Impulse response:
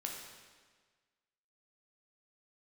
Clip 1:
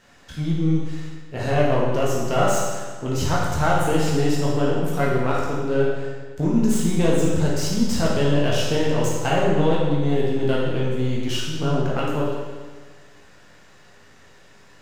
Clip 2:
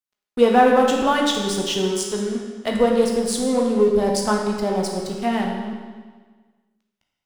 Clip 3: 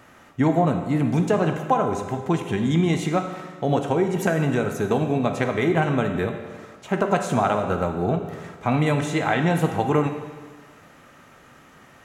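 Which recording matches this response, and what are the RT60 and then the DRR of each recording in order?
2; 1.5 s, 1.5 s, 1.5 s; -5.5 dB, -0.5 dB, 5.0 dB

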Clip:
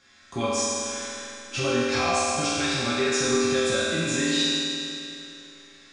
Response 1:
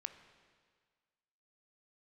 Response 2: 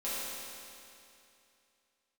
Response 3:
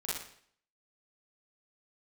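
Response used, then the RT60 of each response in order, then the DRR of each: 2; 1.7 s, 2.7 s, 0.60 s; 9.0 dB, -11.5 dB, -8.5 dB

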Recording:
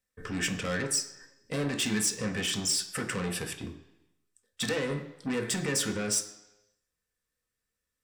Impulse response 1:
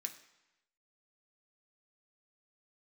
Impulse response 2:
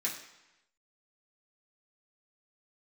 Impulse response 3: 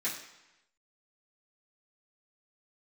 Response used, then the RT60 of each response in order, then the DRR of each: 1; 0.95 s, 0.95 s, 0.95 s; 3.0 dB, -6.0 dB, -11.0 dB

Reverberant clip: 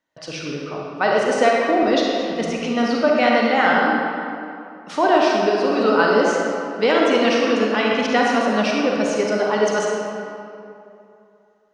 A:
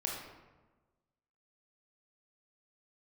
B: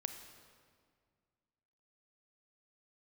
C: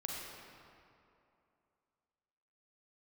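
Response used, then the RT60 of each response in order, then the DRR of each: C; 1.2 s, 2.0 s, 2.7 s; -2.0 dB, 7.0 dB, -2.5 dB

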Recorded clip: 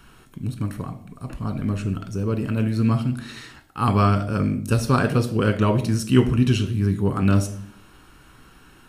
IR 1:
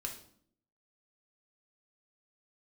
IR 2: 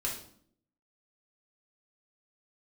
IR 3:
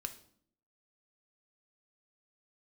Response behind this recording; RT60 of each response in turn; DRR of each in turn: 3; 0.60 s, 0.60 s, 0.60 s; 1.0 dB, -4.0 dB, 7.0 dB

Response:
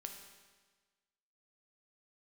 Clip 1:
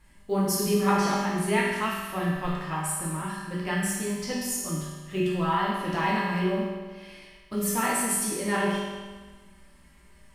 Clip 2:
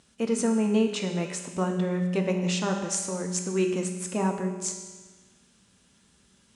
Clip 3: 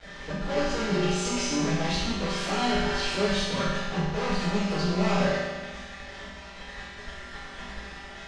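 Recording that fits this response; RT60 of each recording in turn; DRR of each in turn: 2; 1.4 s, 1.4 s, 1.4 s; -6.5 dB, 3.0 dB, -15.0 dB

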